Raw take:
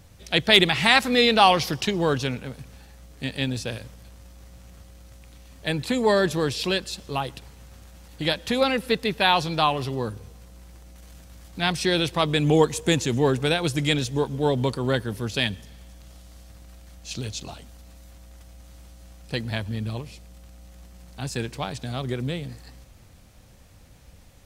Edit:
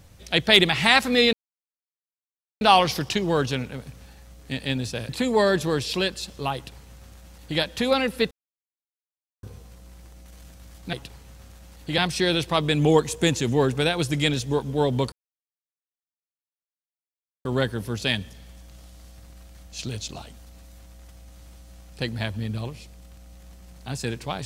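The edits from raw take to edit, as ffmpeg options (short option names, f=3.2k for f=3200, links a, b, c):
-filter_complex "[0:a]asplit=8[a][b][c][d][e][f][g][h];[a]atrim=end=1.33,asetpts=PTS-STARTPTS,afade=t=out:st=1.326:d=0.004:c=hsin,apad=pad_dur=1.28[i];[b]atrim=start=1.33:end=3.812,asetpts=PTS-STARTPTS,afade=t=in:d=0.004:c=hsin[j];[c]atrim=start=5.788:end=9.01,asetpts=PTS-STARTPTS,afade=t=out:st=3.218:d=0.004:c=hsin[k];[d]atrim=start=9.01:end=10.13,asetpts=PTS-STARTPTS,volume=0[l];[e]atrim=start=10.13:end=11.632,asetpts=PTS-STARTPTS,afade=t=in:d=0.004:c=hsin[m];[f]atrim=start=7.248:end=8.302[n];[g]atrim=start=11.628:end=14.77,asetpts=PTS-STARTPTS,afade=t=out:st=3.138:d=0.004:c=hsin,apad=pad_dur=2.33[o];[h]atrim=start=14.77,asetpts=PTS-STARTPTS,afade=t=in:d=0.004:c=hsin[p];[i][j]concat=n=2:v=0:a=1[q];[k][l][m]concat=n=3:v=0:a=1[r];[q][r]acrossfade=d=0.004:c1=hsin:c2=hsin[s];[s][n]acrossfade=d=0.004:c1=hsin:c2=hsin[t];[o][p]concat=n=2:v=0:a=1[u];[t][u]acrossfade=d=0.004:c1=hsin:c2=hsin"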